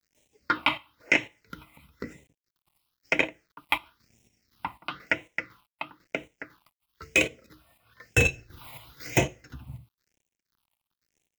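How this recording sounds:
a quantiser's noise floor 10 bits, dither none
phaser sweep stages 6, 1 Hz, lowest notch 420–1,300 Hz
chopped level 2 Hz, depth 60%, duty 55%

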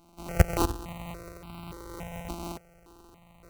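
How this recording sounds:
a buzz of ramps at a fixed pitch in blocks of 256 samples
sample-and-hold tremolo
aliases and images of a low sample rate 1,700 Hz, jitter 0%
notches that jump at a steady rate 3.5 Hz 480–1,800 Hz

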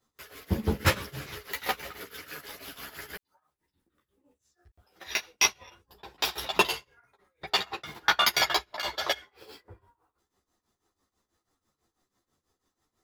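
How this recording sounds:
tremolo triangle 6.1 Hz, depth 90%
a shimmering, thickened sound

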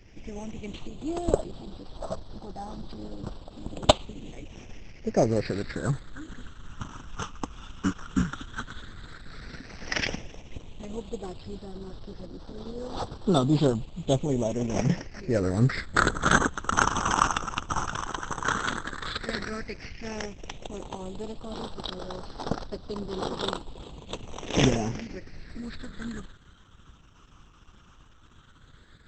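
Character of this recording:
aliases and images of a low sample rate 7,100 Hz, jitter 0%
phaser sweep stages 8, 0.1 Hz, lowest notch 600–2,200 Hz
Opus

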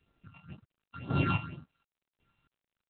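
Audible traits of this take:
a buzz of ramps at a fixed pitch in blocks of 32 samples
phaser sweep stages 6, 2 Hz, lowest notch 400–2,400 Hz
chopped level 0.91 Hz, depth 65%, duty 25%
G.726

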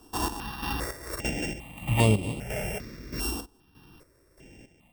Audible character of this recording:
a buzz of ramps at a fixed pitch in blocks of 16 samples
chopped level 1.6 Hz, depth 65%, duty 45%
notches that jump at a steady rate 2.5 Hz 570–5,700 Hz

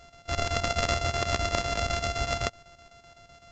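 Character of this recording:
a buzz of ramps at a fixed pitch in blocks of 64 samples
chopped level 7.9 Hz, depth 65%, duty 75%
A-law companding

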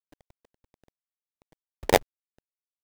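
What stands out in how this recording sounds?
a quantiser's noise floor 10 bits, dither none
chopped level 1.5 Hz, depth 65%, duty 65%
aliases and images of a low sample rate 1,300 Hz, jitter 20%

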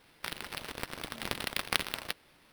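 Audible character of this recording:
aliases and images of a low sample rate 7,000 Hz, jitter 0%

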